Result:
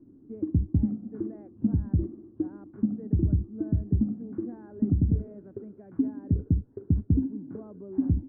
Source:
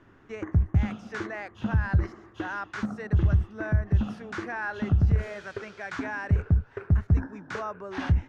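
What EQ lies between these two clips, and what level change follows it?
low-pass with resonance 280 Hz, resonance Q 3.5
high-frequency loss of the air 430 metres
low-shelf EQ 100 Hz −7 dB
0.0 dB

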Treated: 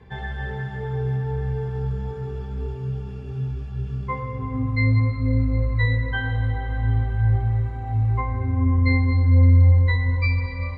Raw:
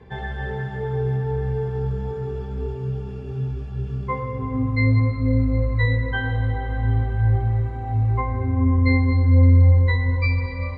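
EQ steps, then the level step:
parametric band 430 Hz −5 dB 1.9 octaves
0.0 dB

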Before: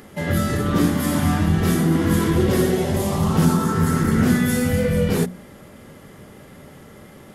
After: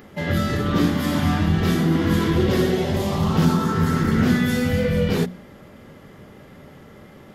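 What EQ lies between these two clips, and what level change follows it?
parametric band 9,600 Hz −11.5 dB 0.93 octaves
dynamic equaliser 3,800 Hz, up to +5 dB, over −45 dBFS, Q 0.91
−1.0 dB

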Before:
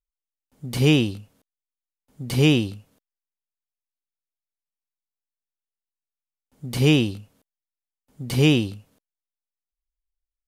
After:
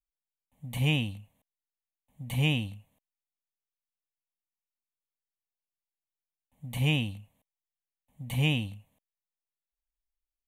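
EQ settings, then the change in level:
phaser with its sweep stopped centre 1,400 Hz, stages 6
−5.0 dB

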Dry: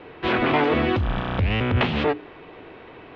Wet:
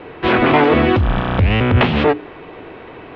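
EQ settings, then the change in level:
high-shelf EQ 4,100 Hz −7 dB
+8.0 dB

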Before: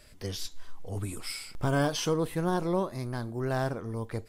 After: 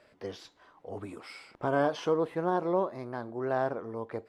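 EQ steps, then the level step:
high-pass filter 590 Hz 12 dB per octave
low-pass filter 3,300 Hz 6 dB per octave
spectral tilt −4.5 dB per octave
+2.5 dB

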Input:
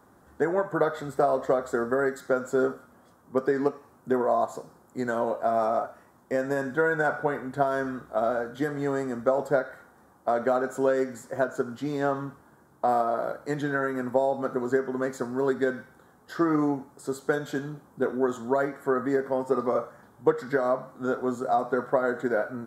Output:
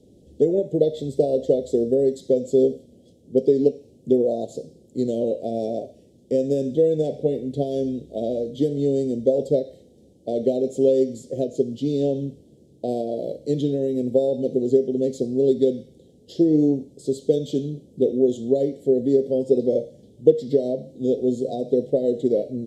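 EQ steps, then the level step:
Chebyshev band-stop filter 510–3,100 Hz, order 3
high-frequency loss of the air 67 metres
+8.0 dB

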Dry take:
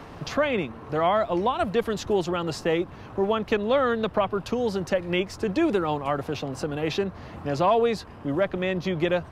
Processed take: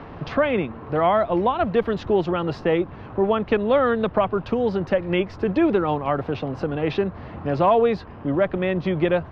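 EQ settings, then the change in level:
high-frequency loss of the air 300 metres
+4.5 dB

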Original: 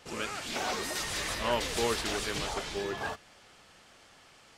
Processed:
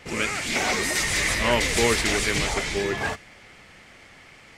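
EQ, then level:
low-shelf EQ 460 Hz +9 dB
parametric band 2,100 Hz +12.5 dB 0.53 octaves
dynamic equaliser 7,900 Hz, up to +8 dB, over −50 dBFS, Q 0.71
+3.0 dB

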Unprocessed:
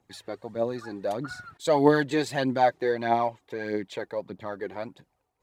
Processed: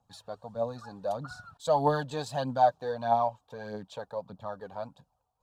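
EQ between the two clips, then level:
high-shelf EQ 6,600 Hz −8 dB
phaser with its sweep stopped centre 850 Hz, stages 4
0.0 dB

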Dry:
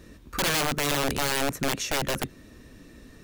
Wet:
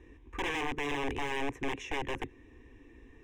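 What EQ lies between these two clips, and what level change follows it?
high-frequency loss of the air 140 metres
phaser with its sweep stopped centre 910 Hz, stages 8
−3.0 dB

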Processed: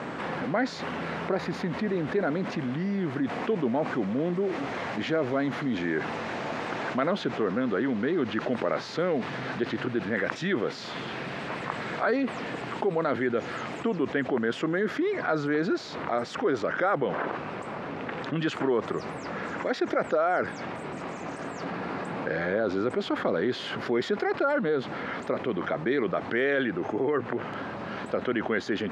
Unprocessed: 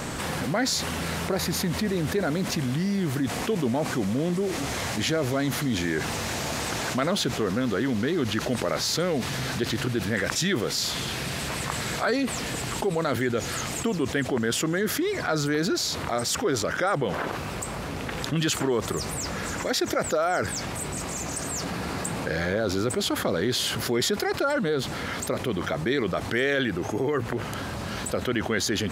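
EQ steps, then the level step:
band-pass filter 200–2,100 Hz
0.0 dB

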